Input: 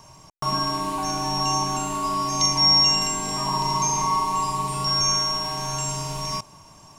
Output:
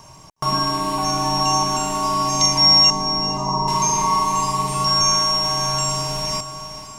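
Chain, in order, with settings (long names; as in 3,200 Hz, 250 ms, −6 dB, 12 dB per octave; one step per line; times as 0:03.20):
0:02.90–0:03.68: low-pass filter 1,100 Hz 24 dB per octave
feedback delay with all-pass diffusion 493 ms, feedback 42%, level −11 dB
level +4 dB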